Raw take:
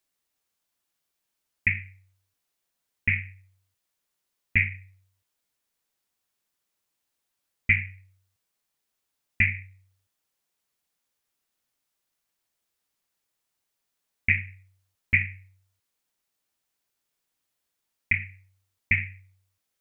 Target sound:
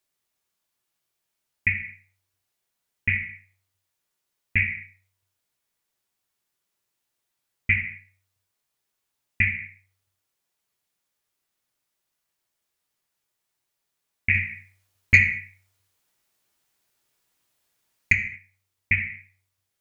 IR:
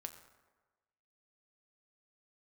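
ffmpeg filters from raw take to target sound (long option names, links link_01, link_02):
-filter_complex "[0:a]asplit=3[link_01][link_02][link_03];[link_01]afade=type=out:start_time=14.34:duration=0.02[link_04];[link_02]acontrast=74,afade=type=in:start_time=14.34:duration=0.02,afade=type=out:start_time=18.12:duration=0.02[link_05];[link_03]afade=type=in:start_time=18.12:duration=0.02[link_06];[link_04][link_05][link_06]amix=inputs=3:normalize=0[link_07];[1:a]atrim=start_sample=2205,afade=type=out:start_time=0.4:duration=0.01,atrim=end_sample=18081,asetrate=66150,aresample=44100[link_08];[link_07][link_08]afir=irnorm=-1:irlink=0,volume=8.5dB"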